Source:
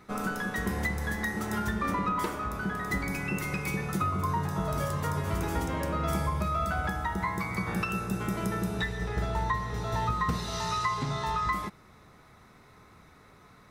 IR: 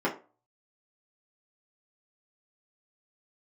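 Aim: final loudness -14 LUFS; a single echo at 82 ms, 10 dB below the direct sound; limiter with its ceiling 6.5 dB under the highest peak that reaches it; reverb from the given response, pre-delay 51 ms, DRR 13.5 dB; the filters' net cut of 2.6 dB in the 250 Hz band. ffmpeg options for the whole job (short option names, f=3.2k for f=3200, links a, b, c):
-filter_complex "[0:a]equalizer=f=250:t=o:g=-4,alimiter=limit=-22.5dB:level=0:latency=1,aecho=1:1:82:0.316,asplit=2[a][b];[1:a]atrim=start_sample=2205,adelay=51[c];[b][c]afir=irnorm=-1:irlink=0,volume=-24.5dB[d];[a][d]amix=inputs=2:normalize=0,volume=17.5dB"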